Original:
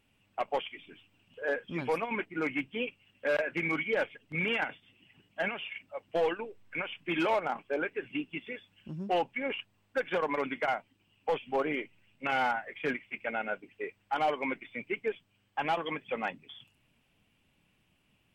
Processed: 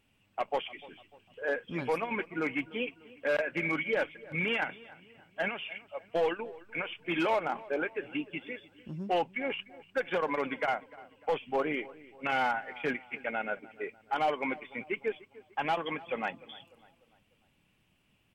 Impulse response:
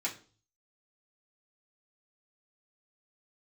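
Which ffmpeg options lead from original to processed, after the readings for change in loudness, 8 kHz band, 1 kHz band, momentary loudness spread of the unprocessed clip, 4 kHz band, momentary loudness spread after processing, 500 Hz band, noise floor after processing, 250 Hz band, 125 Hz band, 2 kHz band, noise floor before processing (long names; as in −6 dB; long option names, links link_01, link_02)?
0.0 dB, can't be measured, 0.0 dB, 11 LU, 0.0 dB, 13 LU, 0.0 dB, −70 dBFS, 0.0 dB, 0.0 dB, 0.0 dB, −72 dBFS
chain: -filter_complex "[0:a]asplit=2[link_01][link_02];[link_02]adelay=298,lowpass=frequency=2300:poles=1,volume=-19.5dB,asplit=2[link_03][link_04];[link_04]adelay=298,lowpass=frequency=2300:poles=1,volume=0.47,asplit=2[link_05][link_06];[link_06]adelay=298,lowpass=frequency=2300:poles=1,volume=0.47,asplit=2[link_07][link_08];[link_08]adelay=298,lowpass=frequency=2300:poles=1,volume=0.47[link_09];[link_01][link_03][link_05][link_07][link_09]amix=inputs=5:normalize=0"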